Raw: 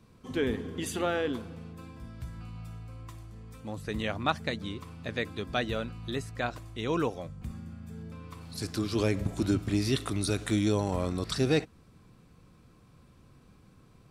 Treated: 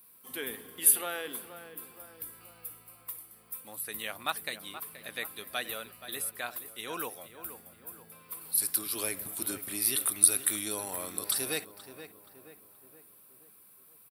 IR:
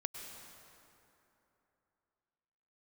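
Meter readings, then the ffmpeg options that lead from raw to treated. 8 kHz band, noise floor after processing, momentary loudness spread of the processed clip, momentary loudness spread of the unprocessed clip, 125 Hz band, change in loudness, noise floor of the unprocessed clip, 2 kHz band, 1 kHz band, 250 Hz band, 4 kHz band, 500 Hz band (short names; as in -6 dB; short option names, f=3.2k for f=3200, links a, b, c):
+15.5 dB, -58 dBFS, 22 LU, 17 LU, -21.5 dB, +1.5 dB, -58 dBFS, -2.0 dB, -5.0 dB, -14.5 dB, -0.5 dB, -10.0 dB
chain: -filter_complex "[0:a]highpass=f=1.5k:p=1,asplit=2[a][b];[b]adelay=476,lowpass=f=2k:p=1,volume=-11dB,asplit=2[c][d];[d]adelay=476,lowpass=f=2k:p=1,volume=0.53,asplit=2[e][f];[f]adelay=476,lowpass=f=2k:p=1,volume=0.53,asplit=2[g][h];[h]adelay=476,lowpass=f=2k:p=1,volume=0.53,asplit=2[i][j];[j]adelay=476,lowpass=f=2k:p=1,volume=0.53,asplit=2[k][l];[l]adelay=476,lowpass=f=2k:p=1,volume=0.53[m];[c][e][g][i][k][m]amix=inputs=6:normalize=0[n];[a][n]amix=inputs=2:normalize=0,aexciter=amount=15:drive=8.5:freq=9.8k"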